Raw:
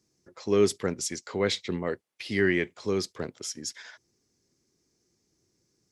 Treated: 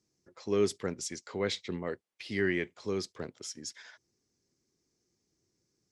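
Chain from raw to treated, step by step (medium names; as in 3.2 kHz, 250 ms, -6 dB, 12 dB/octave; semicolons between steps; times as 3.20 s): low-pass 9.9 kHz 12 dB/octave; trim -5.5 dB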